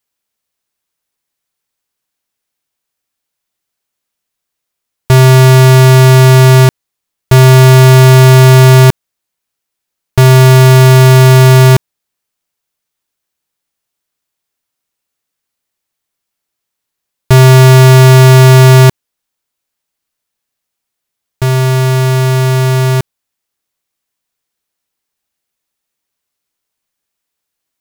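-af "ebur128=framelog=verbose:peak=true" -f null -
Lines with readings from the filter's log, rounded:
Integrated loudness:
  I:          -5.1 LUFS
  Threshold: -15.4 LUFS
Loudness range:
  LRA:        10.8 LU
  Threshold: -28.0 LUFS
  LRA low:   -15.6 LUFS
  LRA high:   -4.9 LUFS
True peak:
  Peak:       -0.1 dBFS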